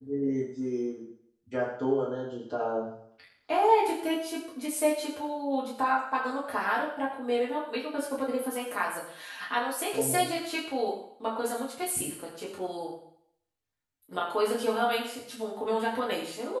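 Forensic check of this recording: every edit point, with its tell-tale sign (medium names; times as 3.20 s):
no edits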